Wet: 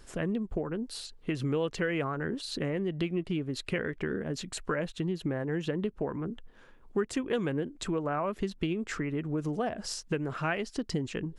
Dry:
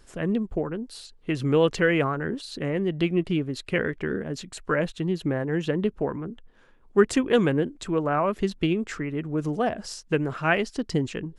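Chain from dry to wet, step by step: compressor 3:1, threshold -32 dBFS, peak gain reduction 14.5 dB; gain +1.5 dB

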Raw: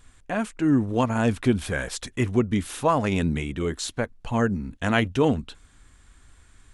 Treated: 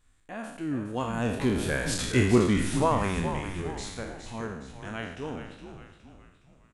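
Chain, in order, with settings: spectral trails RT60 0.83 s; Doppler pass-by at 2.21, 7 m/s, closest 2.9 m; frequency-shifting echo 0.415 s, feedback 46%, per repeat -93 Hz, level -9 dB

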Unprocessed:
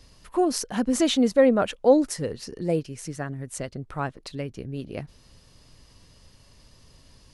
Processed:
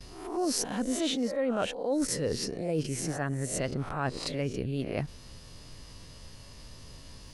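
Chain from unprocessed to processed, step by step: spectral swells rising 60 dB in 0.45 s; gate with hold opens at -44 dBFS; reverse; compressor 8:1, threshold -31 dBFS, peak gain reduction 19.5 dB; reverse; gain +4 dB

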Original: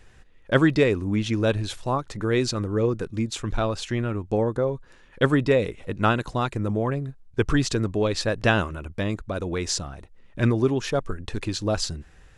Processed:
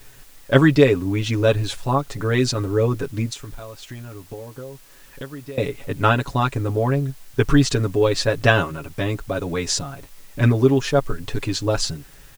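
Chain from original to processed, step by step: comb 7.2 ms, depth 83%; 3.33–5.58 compressor 6:1, threshold -36 dBFS, peak gain reduction 23.5 dB; added noise white -53 dBFS; gain +2 dB

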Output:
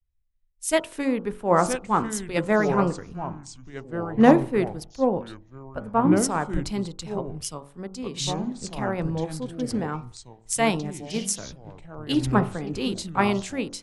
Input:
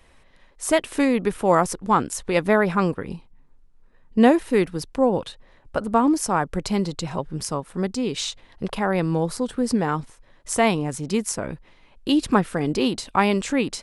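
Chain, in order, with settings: low shelf 150 Hz +3.5 dB; de-hum 46.96 Hz, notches 31; echoes that change speed 0.785 s, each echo -4 st, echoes 2, each echo -6 dB; three-band expander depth 100%; gain -5 dB

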